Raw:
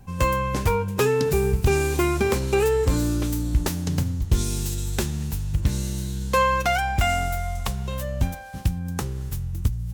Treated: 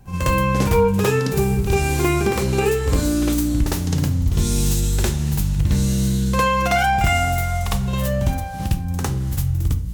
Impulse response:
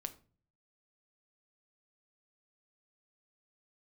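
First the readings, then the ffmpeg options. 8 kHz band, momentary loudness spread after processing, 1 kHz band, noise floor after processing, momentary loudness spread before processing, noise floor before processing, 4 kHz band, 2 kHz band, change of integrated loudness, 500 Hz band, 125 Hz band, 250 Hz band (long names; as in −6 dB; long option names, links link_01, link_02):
+5.0 dB, 5 LU, +4.0 dB, −25 dBFS, 8 LU, −31 dBFS, +4.0 dB, +4.0 dB, +4.5 dB, +2.0 dB, +5.0 dB, +6.5 dB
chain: -filter_complex "[0:a]alimiter=limit=-16dB:level=0:latency=1:release=340,asplit=2[link_01][link_02];[1:a]atrim=start_sample=2205,adelay=56[link_03];[link_02][link_03]afir=irnorm=-1:irlink=0,volume=9.5dB[link_04];[link_01][link_04]amix=inputs=2:normalize=0"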